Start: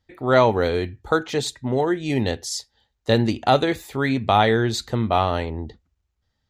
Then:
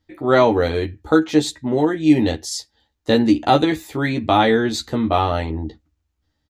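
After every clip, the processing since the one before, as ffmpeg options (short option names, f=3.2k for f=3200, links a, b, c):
-filter_complex "[0:a]equalizer=f=300:t=o:w=0.22:g=14,asplit=2[a][b];[b]adelay=13,volume=-4dB[c];[a][c]amix=inputs=2:normalize=0"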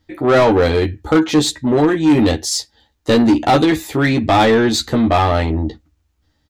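-af "apsyclip=8dB,asoftclip=type=hard:threshold=-1.5dB,acontrast=71,volume=-6.5dB"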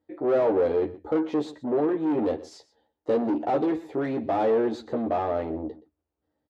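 -af "asoftclip=type=tanh:threshold=-12.5dB,bandpass=f=490:t=q:w=1.5:csg=0,aecho=1:1:123:0.119,volume=-3.5dB"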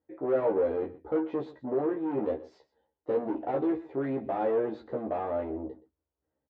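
-filter_complex "[0:a]lowpass=2.3k,asplit=2[a][b];[b]adelay=15,volume=-4dB[c];[a][c]amix=inputs=2:normalize=0,volume=-6dB"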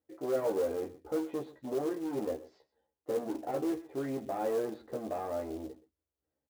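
-filter_complex "[0:a]bandreject=f=920:w=21,acrossover=split=1100[a][b];[a]acrusher=bits=5:mode=log:mix=0:aa=0.000001[c];[c][b]amix=inputs=2:normalize=0,volume=-4.5dB"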